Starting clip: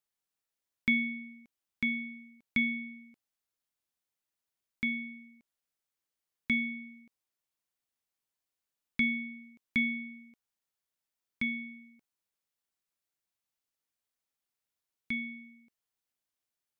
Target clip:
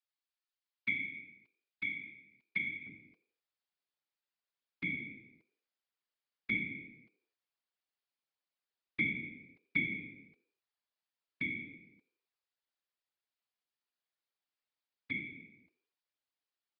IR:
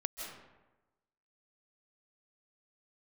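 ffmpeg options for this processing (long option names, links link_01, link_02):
-filter_complex "[0:a]acrossover=split=3200[link_01][link_02];[link_02]acompressor=threshold=-56dB:ratio=4:attack=1:release=60[link_03];[link_01][link_03]amix=inputs=2:normalize=0,asetnsamples=nb_out_samples=441:pad=0,asendcmd='2.87 highpass f 370',highpass=frequency=1500:poles=1,afftfilt=real='hypot(re,im)*cos(2*PI*random(0))':imag='hypot(re,im)*sin(2*PI*random(1))':win_size=512:overlap=0.75,asplit=4[link_04][link_05][link_06][link_07];[link_05]adelay=86,afreqshift=67,volume=-20dB[link_08];[link_06]adelay=172,afreqshift=134,volume=-26.9dB[link_09];[link_07]adelay=258,afreqshift=201,volume=-33.9dB[link_10];[link_04][link_08][link_09][link_10]amix=inputs=4:normalize=0,aresample=11025,aresample=44100,volume=4dB"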